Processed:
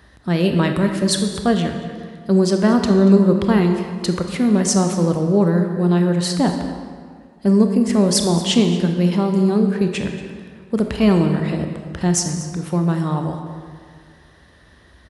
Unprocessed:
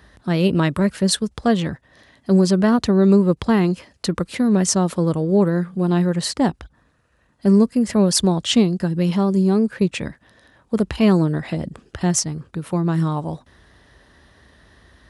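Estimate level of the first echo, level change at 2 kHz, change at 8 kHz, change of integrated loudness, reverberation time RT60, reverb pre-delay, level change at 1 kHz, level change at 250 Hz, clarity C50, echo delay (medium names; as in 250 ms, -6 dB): -16.5 dB, +1.0 dB, +1.0 dB, +1.0 dB, 2.0 s, 24 ms, +1.0 dB, +1.5 dB, 6.0 dB, 233 ms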